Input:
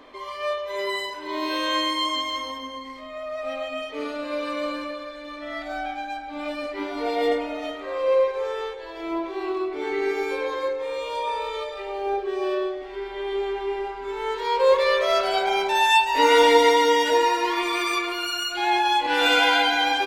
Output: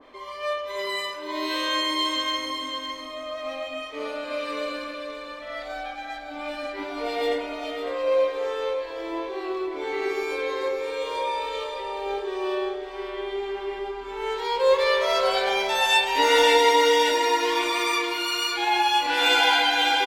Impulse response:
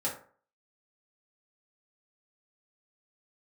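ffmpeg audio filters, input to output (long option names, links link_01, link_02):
-filter_complex "[0:a]aecho=1:1:554|1108|1662|2216:0.422|0.148|0.0517|0.0181,asplit=2[link_01][link_02];[1:a]atrim=start_sample=2205,adelay=32[link_03];[link_02][link_03]afir=irnorm=-1:irlink=0,volume=-14.5dB[link_04];[link_01][link_04]amix=inputs=2:normalize=0,adynamicequalizer=threshold=0.02:dfrequency=2100:dqfactor=0.7:tfrequency=2100:tqfactor=0.7:attack=5:release=100:ratio=0.375:range=2:mode=boostabove:tftype=highshelf,volume=-3dB"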